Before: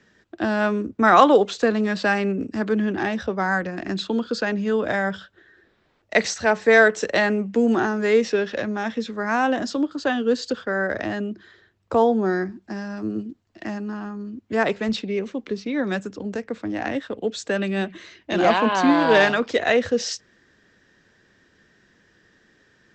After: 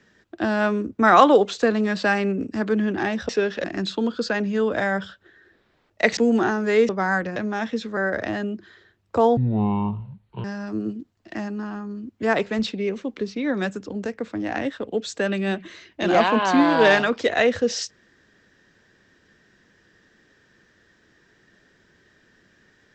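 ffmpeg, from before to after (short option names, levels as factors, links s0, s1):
-filter_complex "[0:a]asplit=9[s0][s1][s2][s3][s4][s5][s6][s7][s8];[s0]atrim=end=3.292[s9];[s1]atrim=start=8.248:end=8.602[s10];[s2]atrim=start=3.758:end=6.292[s11];[s3]atrim=start=7.528:end=8.252[s12];[s4]atrim=start=3.288:end=3.762[s13];[s5]atrim=start=8.598:end=9.212[s14];[s6]atrim=start=10.738:end=12.144[s15];[s7]atrim=start=12.14:end=12.74,asetpts=PTS-STARTPTS,asetrate=24696,aresample=44100[s16];[s8]atrim=start=12.736[s17];[s9][s10]acrossfade=d=0.004:c1=hsin:c2=hsin[s18];[s18][s11]acrossfade=d=0.004:c1=hsin:c2=hsin[s19];[s19][s12]acrossfade=d=0.004:c1=hsin:c2=hsin[s20];[s20][s13]acrossfade=d=0.004:c1=hsin:c2=hsin[s21];[s21][s14]acrossfade=d=0.004:c1=hsin:c2=hsin[s22];[s22][s15]acrossfade=d=0.004:c1=hsin:c2=hsin[s23];[s23][s16]acrossfade=d=0.004:c1=hsin:c2=hsin[s24];[s24][s17]acrossfade=d=0.004:c1=hsin:c2=hsin"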